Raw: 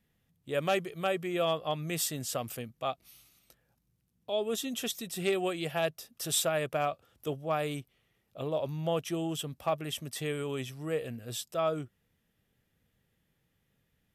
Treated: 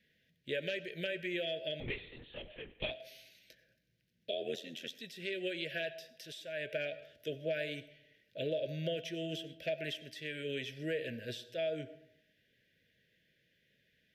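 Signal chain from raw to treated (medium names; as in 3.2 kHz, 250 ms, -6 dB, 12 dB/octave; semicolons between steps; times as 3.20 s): Chebyshev band-stop 650–1500 Hz, order 5; in parallel at +3 dB: peak limiter -25 dBFS, peak gain reduction 7 dB; on the sum: tilt EQ +4 dB/octave; 4.31–5.00 s: AM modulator 84 Hz, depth 85%; compression 10:1, threshold -31 dBFS, peak gain reduction 21 dB; distance through air 280 m; on a send at -15 dB: reverberation RT60 0.80 s, pre-delay 50 ms; 1.80–2.91 s: on the sum: LPC vocoder at 8 kHz whisper; flange 0.21 Hz, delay 4.1 ms, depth 4.7 ms, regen -79%; trim +4.5 dB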